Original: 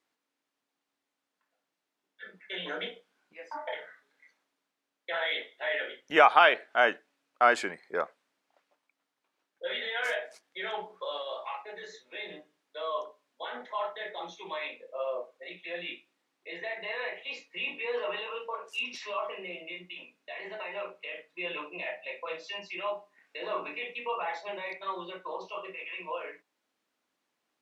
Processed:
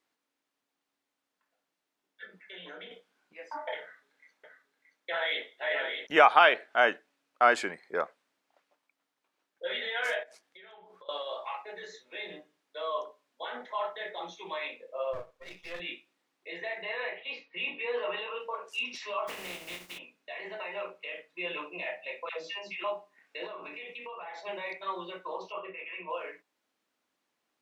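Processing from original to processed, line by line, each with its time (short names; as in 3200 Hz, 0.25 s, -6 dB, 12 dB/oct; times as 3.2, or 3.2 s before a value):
2.25–2.91 compressor 2:1, threshold -50 dBFS
3.81–6.07 echo 0.625 s -5.5 dB
10.23–11.09 compressor 10:1, threshold -50 dBFS
15.13–15.8 half-wave gain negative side -12 dB
16.82–18.4 LPF 4300 Hz 24 dB/oct
19.27–19.97 spectral contrast lowered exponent 0.36
22.29–22.84 dispersion lows, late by 92 ms, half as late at 610 Hz
23.46–24.38 compressor, threshold -39 dBFS
25.52–26.1 LPF 2800 Hz 24 dB/oct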